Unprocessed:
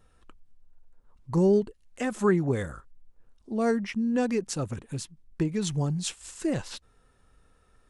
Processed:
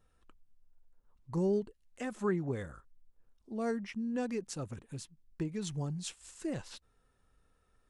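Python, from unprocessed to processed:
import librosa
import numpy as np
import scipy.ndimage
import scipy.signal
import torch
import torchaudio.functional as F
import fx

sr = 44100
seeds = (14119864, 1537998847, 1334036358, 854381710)

y = fx.high_shelf(x, sr, hz=7100.0, db=-6.5, at=(2.13, 2.74))
y = y * librosa.db_to_amplitude(-9.0)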